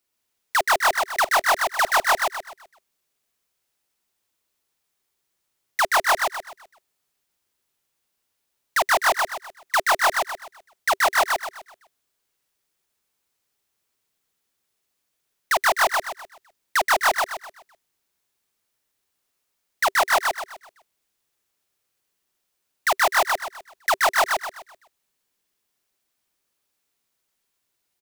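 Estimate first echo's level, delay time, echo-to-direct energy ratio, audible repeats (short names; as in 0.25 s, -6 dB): -3.0 dB, 0.127 s, -2.5 dB, 4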